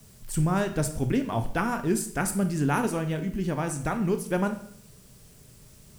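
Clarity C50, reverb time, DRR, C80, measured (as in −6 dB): 11.0 dB, 0.60 s, 7.5 dB, 14.5 dB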